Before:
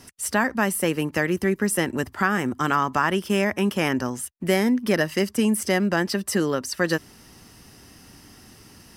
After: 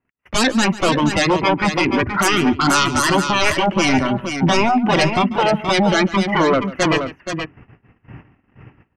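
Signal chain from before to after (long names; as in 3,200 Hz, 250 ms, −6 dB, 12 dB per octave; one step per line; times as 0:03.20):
elliptic low-pass filter 2,600 Hz, stop band 40 dB
in parallel at −0.5 dB: downward compressor 5 to 1, threshold −38 dBFS, peak gain reduction 19.5 dB
on the sum: sine wavefolder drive 17 dB, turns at −5.5 dBFS
noise reduction from a noise print of the clip's start 12 dB
noise gate −32 dBFS, range −37 dB
on a send: multi-tap delay 143/475 ms −17/−7.5 dB
on the sum: level −5 dB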